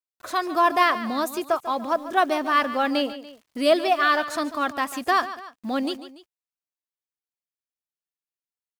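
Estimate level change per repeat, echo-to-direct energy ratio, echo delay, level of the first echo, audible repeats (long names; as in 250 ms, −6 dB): −6.0 dB, −13.0 dB, 144 ms, −14.0 dB, 2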